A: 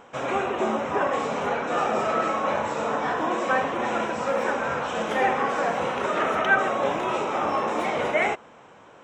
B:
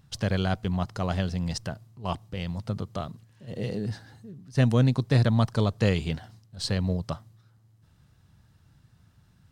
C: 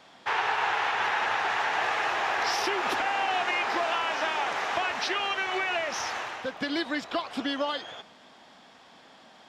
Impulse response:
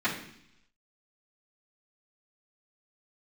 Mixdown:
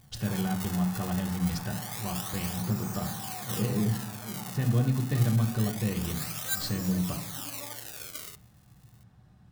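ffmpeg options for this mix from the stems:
-filter_complex "[0:a]equalizer=frequency=91:width_type=o:width=1.7:gain=14.5,acrusher=samples=32:mix=1:aa=0.000001:lfo=1:lforange=51.2:lforate=0.26,aderivative,volume=-6dB,asplit=2[link_01][link_02];[link_02]volume=-24dB[link_03];[1:a]lowshelf=frequency=270:gain=8.5,alimiter=limit=-15.5dB:level=0:latency=1:release=309,volume=-6.5dB,asplit=2[link_04][link_05];[link_05]volume=-11dB[link_06];[2:a]lowpass=1300,volume=-19dB,asplit=2[link_07][link_08];[link_08]volume=-12.5dB[link_09];[3:a]atrim=start_sample=2205[link_10];[link_03][link_06][link_09]amix=inputs=3:normalize=0[link_11];[link_11][link_10]afir=irnorm=-1:irlink=0[link_12];[link_01][link_04][link_07][link_12]amix=inputs=4:normalize=0"

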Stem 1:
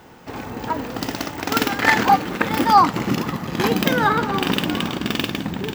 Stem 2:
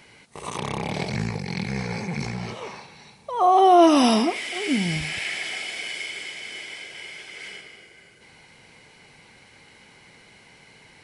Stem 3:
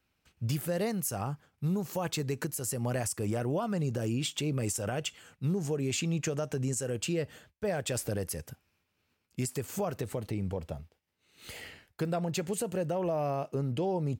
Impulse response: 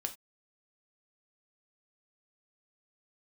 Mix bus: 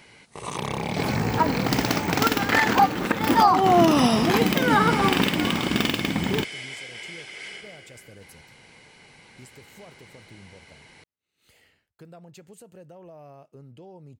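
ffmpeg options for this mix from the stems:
-filter_complex "[0:a]adelay=700,volume=3dB[link_01];[1:a]volume=0dB[link_02];[2:a]volume=-15dB[link_03];[link_01][link_02][link_03]amix=inputs=3:normalize=0,alimiter=limit=-7.5dB:level=0:latency=1:release=401"

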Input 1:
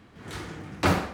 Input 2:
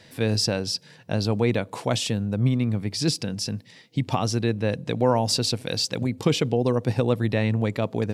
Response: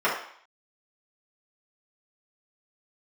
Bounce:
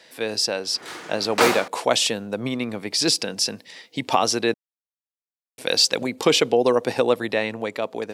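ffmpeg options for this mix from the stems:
-filter_complex "[0:a]adynamicequalizer=threshold=0.00794:dfrequency=3600:dqfactor=0.7:tfrequency=3600:tqfactor=0.7:attack=5:release=100:ratio=0.375:range=3.5:mode=boostabove:tftype=highshelf,adelay=550,volume=1dB[link_01];[1:a]volume=2dB,asplit=3[link_02][link_03][link_04];[link_02]atrim=end=4.54,asetpts=PTS-STARTPTS,afade=type=out:start_time=4.536:duration=0.004:curve=hsin[link_05];[link_03]atrim=start=4.54:end=5.58,asetpts=PTS-STARTPTS,volume=0[link_06];[link_04]atrim=start=5.58,asetpts=PTS-STARTPTS,afade=type=in:duration=0.004:curve=hsin[link_07];[link_05][link_06][link_07]concat=n=3:v=0:a=1[link_08];[link_01][link_08]amix=inputs=2:normalize=0,highpass=420,dynaudnorm=framelen=200:gausssize=11:maxgain=7dB"

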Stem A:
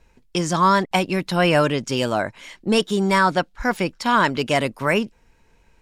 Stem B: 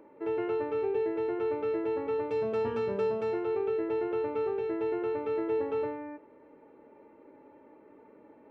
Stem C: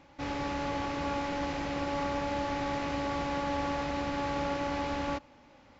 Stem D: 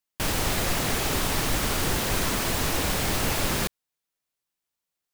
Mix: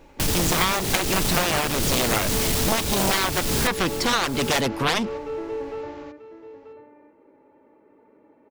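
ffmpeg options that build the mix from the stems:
ffmpeg -i stem1.wav -i stem2.wav -i stem3.wav -i stem4.wav -filter_complex "[0:a]dynaudnorm=framelen=280:gausssize=3:maxgain=6dB,volume=-4.5dB[link_01];[1:a]volume=-7.5dB,asplit=2[link_02][link_03];[link_03]volume=-12.5dB[link_04];[2:a]acompressor=threshold=-35dB:ratio=6,volume=-5.5dB,asplit=2[link_05][link_06];[link_06]volume=-6.5dB[link_07];[3:a]acrossover=split=380|3000[link_08][link_09][link_10];[link_09]acompressor=threshold=-39dB:ratio=6[link_11];[link_08][link_11][link_10]amix=inputs=3:normalize=0,volume=1.5dB,asplit=2[link_12][link_13];[link_13]volume=-13dB[link_14];[link_04][link_07][link_14]amix=inputs=3:normalize=0,aecho=0:1:936:1[link_15];[link_01][link_02][link_05][link_12][link_15]amix=inputs=5:normalize=0,aeval=exprs='0.631*(cos(1*acos(clip(val(0)/0.631,-1,1)))-cos(1*PI/2))+0.282*(cos(7*acos(clip(val(0)/0.631,-1,1)))-cos(7*PI/2))':channel_layout=same,acompressor=threshold=-18dB:ratio=6" out.wav

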